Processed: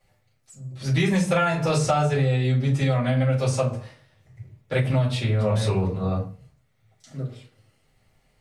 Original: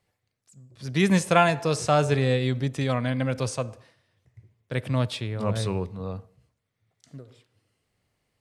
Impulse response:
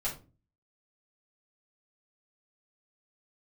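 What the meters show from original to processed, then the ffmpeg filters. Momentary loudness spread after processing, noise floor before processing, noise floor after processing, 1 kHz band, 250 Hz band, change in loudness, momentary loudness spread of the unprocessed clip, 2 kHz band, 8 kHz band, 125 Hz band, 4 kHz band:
14 LU, −80 dBFS, −66 dBFS, −0.5 dB, +1.5 dB, +2.0 dB, 14 LU, 0.0 dB, +0.5 dB, +5.5 dB, 0.0 dB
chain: -filter_complex "[1:a]atrim=start_sample=2205,afade=type=out:start_time=0.21:duration=0.01,atrim=end_sample=9702[link_01];[0:a][link_01]afir=irnorm=-1:irlink=0,acompressor=threshold=-23dB:ratio=10,volume=5dB"

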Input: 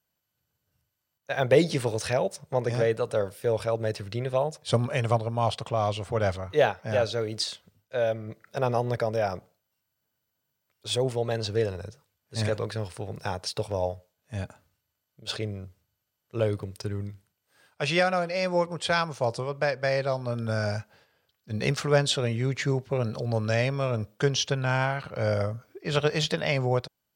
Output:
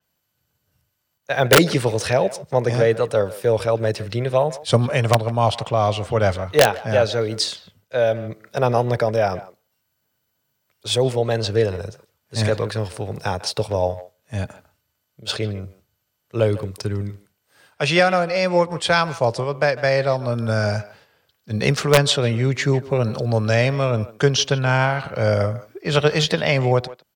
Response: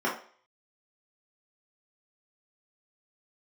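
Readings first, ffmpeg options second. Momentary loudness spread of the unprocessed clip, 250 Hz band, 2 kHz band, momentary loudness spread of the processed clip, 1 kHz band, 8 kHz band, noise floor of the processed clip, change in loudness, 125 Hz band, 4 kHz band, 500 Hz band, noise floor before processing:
11 LU, +7.5 dB, +8.0 dB, 11 LU, +8.0 dB, +8.5 dB, −73 dBFS, +7.5 dB, +7.5 dB, +8.0 dB, +7.5 dB, −81 dBFS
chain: -filter_complex "[0:a]acrossover=split=220|2700[link_01][link_02][link_03];[link_02]aeval=exprs='(mod(4.22*val(0)+1,2)-1)/4.22':channel_layout=same[link_04];[link_01][link_04][link_03]amix=inputs=3:normalize=0,asplit=2[link_05][link_06];[link_06]adelay=150,highpass=300,lowpass=3400,asoftclip=type=hard:threshold=-20dB,volume=-16dB[link_07];[link_05][link_07]amix=inputs=2:normalize=0,adynamicequalizer=threshold=0.00631:dfrequency=5800:dqfactor=0.7:tfrequency=5800:tqfactor=0.7:attack=5:release=100:ratio=0.375:range=1.5:mode=cutabove:tftype=highshelf,volume=7.5dB"

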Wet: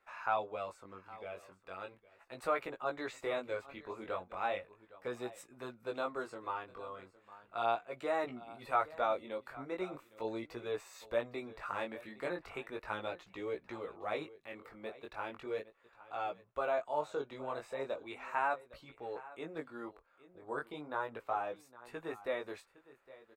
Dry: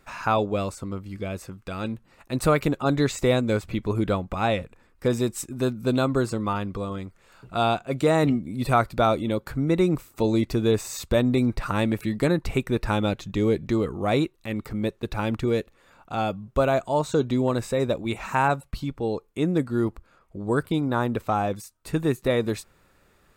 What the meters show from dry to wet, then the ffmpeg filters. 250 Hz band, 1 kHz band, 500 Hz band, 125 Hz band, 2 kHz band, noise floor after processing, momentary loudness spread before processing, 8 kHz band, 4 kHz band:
−23.0 dB, −10.0 dB, −13.5 dB, −30.0 dB, −10.5 dB, −69 dBFS, 10 LU, below −20 dB, −16.5 dB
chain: -filter_complex "[0:a]acrossover=split=460 2900:gain=0.0891 1 0.224[link_01][link_02][link_03];[link_01][link_02][link_03]amix=inputs=3:normalize=0,asplit=2[link_04][link_05];[link_05]aecho=0:1:811:0.119[link_06];[link_04][link_06]amix=inputs=2:normalize=0,flanger=delay=16:depth=6.5:speed=0.37,volume=-6.5dB"

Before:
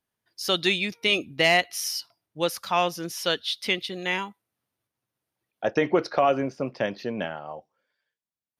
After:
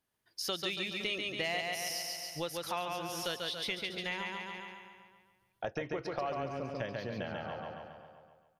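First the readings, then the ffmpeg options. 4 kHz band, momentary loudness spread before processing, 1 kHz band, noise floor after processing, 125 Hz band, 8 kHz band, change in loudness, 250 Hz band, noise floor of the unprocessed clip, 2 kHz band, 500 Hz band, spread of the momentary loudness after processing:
−9.5 dB, 11 LU, −11.0 dB, −75 dBFS, −7.0 dB, −7.5 dB, −11.0 dB, −12.0 dB, below −85 dBFS, −11.0 dB, −12.0 dB, 11 LU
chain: -filter_complex "[0:a]asplit=2[link_01][link_02];[link_02]aecho=0:1:140|280|420|560|700|840:0.631|0.303|0.145|0.0698|0.0335|0.0161[link_03];[link_01][link_03]amix=inputs=2:normalize=0,acompressor=threshold=-37dB:ratio=3,asplit=2[link_04][link_05];[link_05]adelay=513.1,volume=-15dB,highshelf=frequency=4000:gain=-11.5[link_06];[link_04][link_06]amix=inputs=2:normalize=0,asubboost=boost=6.5:cutoff=93"

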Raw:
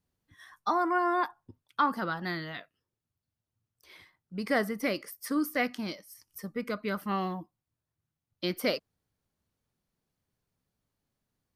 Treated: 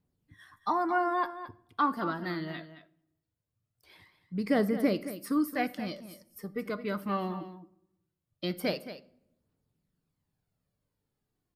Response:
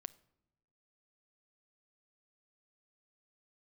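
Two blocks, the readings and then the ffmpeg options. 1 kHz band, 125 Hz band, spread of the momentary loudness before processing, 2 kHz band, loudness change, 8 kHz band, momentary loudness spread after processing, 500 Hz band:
−1.0 dB, +1.5 dB, 14 LU, −3.5 dB, 0.0 dB, −4.0 dB, 17 LU, 0.0 dB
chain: -filter_complex "[0:a]aphaser=in_gain=1:out_gain=1:delay=3.4:decay=0.41:speed=0.21:type=triangular,equalizer=frequency=190:width=0.32:gain=6.5,bandreject=frequency=6000:width=9.2,aecho=1:1:220:0.237[link_01];[1:a]atrim=start_sample=2205[link_02];[link_01][link_02]afir=irnorm=-1:irlink=0"

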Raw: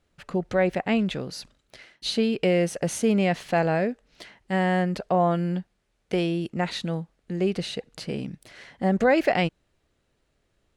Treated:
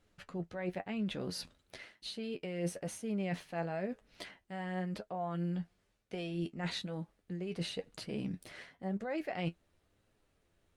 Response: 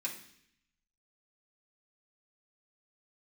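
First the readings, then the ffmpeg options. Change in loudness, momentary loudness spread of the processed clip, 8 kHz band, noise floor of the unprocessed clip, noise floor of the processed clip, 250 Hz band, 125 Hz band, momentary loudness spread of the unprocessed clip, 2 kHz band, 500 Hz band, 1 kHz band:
−14.0 dB, 9 LU, −11.5 dB, −72 dBFS, −76 dBFS, −13.0 dB, −11.5 dB, 12 LU, −15.0 dB, −16.0 dB, −16.0 dB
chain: -af "areverse,acompressor=threshold=-33dB:ratio=16,areverse,flanger=delay=9.4:depth=2.6:regen=42:speed=0.99:shape=sinusoidal,volume=2.5dB" -ar 48000 -c:a libopus -b:a 48k

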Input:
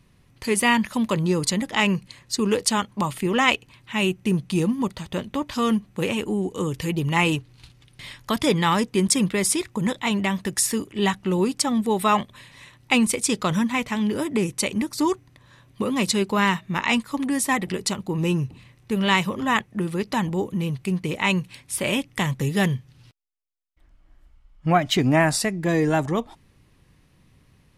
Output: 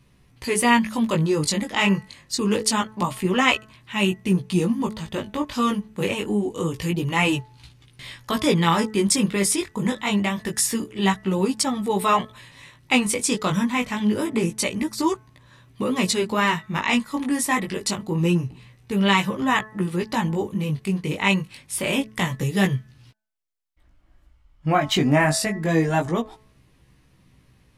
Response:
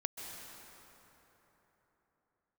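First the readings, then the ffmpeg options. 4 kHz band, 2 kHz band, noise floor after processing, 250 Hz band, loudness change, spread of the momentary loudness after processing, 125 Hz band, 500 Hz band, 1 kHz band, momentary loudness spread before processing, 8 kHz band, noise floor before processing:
+0.5 dB, +0.5 dB, −58 dBFS, +0.5 dB, +0.5 dB, 8 LU, +1.0 dB, 0.0 dB, +0.5 dB, 8 LU, +0.5 dB, −58 dBFS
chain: -af "bandreject=frequency=216.6:width_type=h:width=4,bandreject=frequency=433.2:width_type=h:width=4,bandreject=frequency=649.8:width_type=h:width=4,bandreject=frequency=866.4:width_type=h:width=4,bandreject=frequency=1083:width_type=h:width=4,bandreject=frequency=1299.6:width_type=h:width=4,bandreject=frequency=1516.2:width_type=h:width=4,bandreject=frequency=1732.8:width_type=h:width=4,bandreject=frequency=1949.4:width_type=h:width=4,flanger=delay=15:depth=5.6:speed=0.26,volume=3.5dB"

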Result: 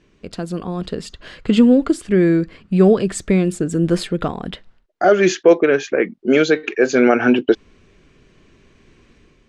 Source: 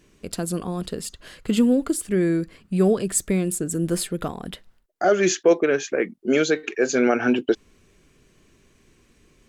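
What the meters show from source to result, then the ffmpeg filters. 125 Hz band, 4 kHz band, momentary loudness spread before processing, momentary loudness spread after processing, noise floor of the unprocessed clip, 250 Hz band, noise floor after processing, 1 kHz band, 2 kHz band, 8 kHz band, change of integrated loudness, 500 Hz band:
+6.0 dB, +3.5 dB, 12 LU, 15 LU, −60 dBFS, +6.0 dB, −56 dBFS, +5.5 dB, +5.5 dB, −5.0 dB, +6.0 dB, +6.0 dB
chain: -af "lowpass=4300,dynaudnorm=framelen=570:gausssize=3:maxgain=7dB,volume=1dB"

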